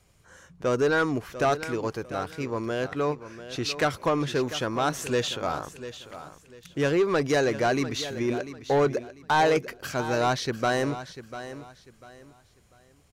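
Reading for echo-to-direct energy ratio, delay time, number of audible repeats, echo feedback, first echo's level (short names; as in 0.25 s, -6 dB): -12.5 dB, 0.695 s, 2, 28%, -13.0 dB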